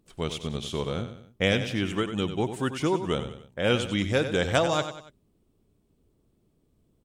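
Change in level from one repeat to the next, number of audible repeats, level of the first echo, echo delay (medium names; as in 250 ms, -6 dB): -7.5 dB, 3, -10.0 dB, 94 ms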